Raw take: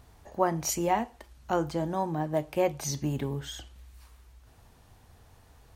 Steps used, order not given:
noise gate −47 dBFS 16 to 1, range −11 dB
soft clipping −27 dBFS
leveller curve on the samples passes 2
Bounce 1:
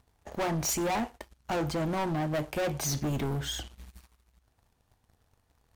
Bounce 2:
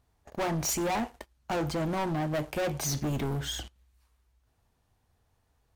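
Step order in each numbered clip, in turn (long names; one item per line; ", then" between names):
leveller curve on the samples, then soft clipping, then noise gate
noise gate, then leveller curve on the samples, then soft clipping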